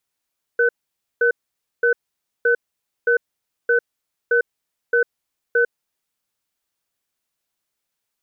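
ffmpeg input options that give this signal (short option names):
-f lavfi -i "aevalsrc='0.158*(sin(2*PI*473*t)+sin(2*PI*1510*t))*clip(min(mod(t,0.62),0.1-mod(t,0.62))/0.005,0,1)':d=5.24:s=44100"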